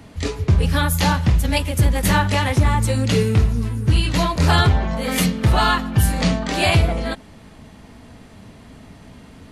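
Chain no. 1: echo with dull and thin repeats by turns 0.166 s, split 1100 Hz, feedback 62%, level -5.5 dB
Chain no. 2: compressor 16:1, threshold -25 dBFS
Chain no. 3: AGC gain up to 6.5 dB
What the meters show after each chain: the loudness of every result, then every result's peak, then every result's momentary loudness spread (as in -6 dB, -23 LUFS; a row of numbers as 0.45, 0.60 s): -17.5, -30.0, -15.5 LUFS; -2.5, -15.5, -1.5 dBFS; 7, 15, 5 LU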